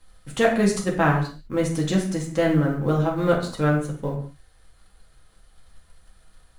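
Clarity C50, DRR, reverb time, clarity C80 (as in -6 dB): 6.5 dB, -2.0 dB, not exponential, 11.0 dB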